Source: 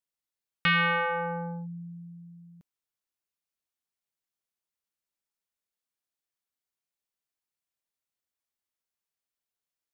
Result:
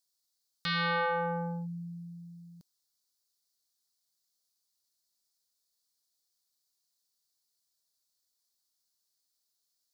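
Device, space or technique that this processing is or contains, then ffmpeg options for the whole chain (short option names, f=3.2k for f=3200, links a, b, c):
over-bright horn tweeter: -af "highshelf=f=3.4k:t=q:w=3:g=9.5,alimiter=limit=-23.5dB:level=0:latency=1:release=271"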